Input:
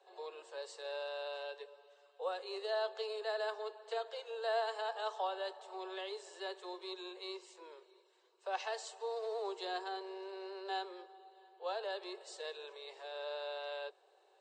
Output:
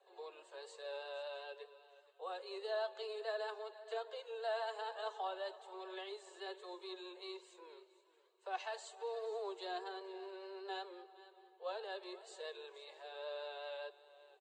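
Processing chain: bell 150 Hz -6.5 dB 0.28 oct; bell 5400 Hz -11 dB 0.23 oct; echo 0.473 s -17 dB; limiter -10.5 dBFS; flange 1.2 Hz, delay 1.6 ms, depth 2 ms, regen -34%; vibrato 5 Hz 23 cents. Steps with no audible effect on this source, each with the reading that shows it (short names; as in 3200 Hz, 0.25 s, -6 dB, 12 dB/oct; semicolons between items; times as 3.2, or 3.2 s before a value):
bell 150 Hz: input band starts at 320 Hz; limiter -10.5 dBFS: input peak -26.0 dBFS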